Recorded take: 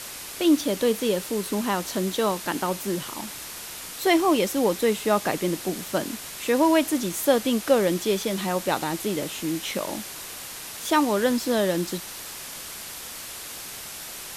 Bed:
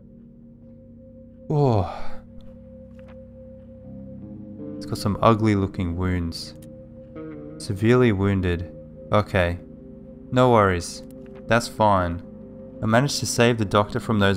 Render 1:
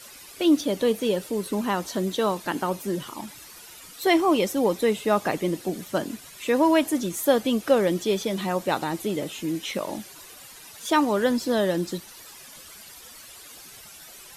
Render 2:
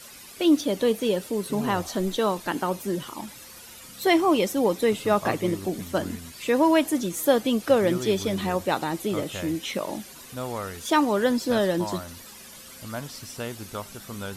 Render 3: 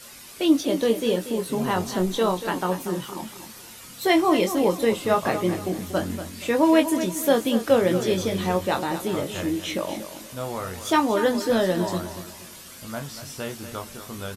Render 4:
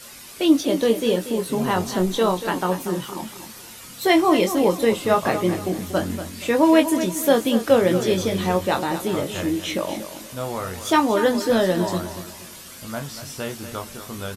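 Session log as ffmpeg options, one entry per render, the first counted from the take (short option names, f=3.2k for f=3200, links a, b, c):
-af "afftdn=nr=12:nf=-38"
-filter_complex "[1:a]volume=-16dB[a];[0:a][a]amix=inputs=2:normalize=0"
-filter_complex "[0:a]asplit=2[a][b];[b]adelay=22,volume=-6dB[c];[a][c]amix=inputs=2:normalize=0,aecho=1:1:237|474|711|948:0.282|0.093|0.0307|0.0101"
-af "volume=2.5dB"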